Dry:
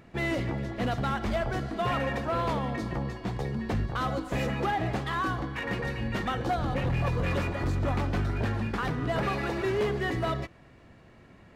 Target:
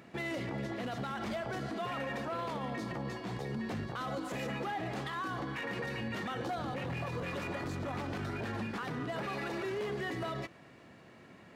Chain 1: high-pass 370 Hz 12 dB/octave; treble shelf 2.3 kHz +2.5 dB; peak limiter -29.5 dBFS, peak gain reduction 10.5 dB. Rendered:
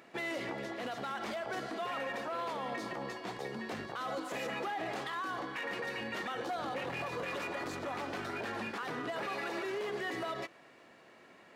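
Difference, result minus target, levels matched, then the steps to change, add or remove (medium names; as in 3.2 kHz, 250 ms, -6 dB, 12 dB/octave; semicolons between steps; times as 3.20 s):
125 Hz band -10.5 dB
change: high-pass 150 Hz 12 dB/octave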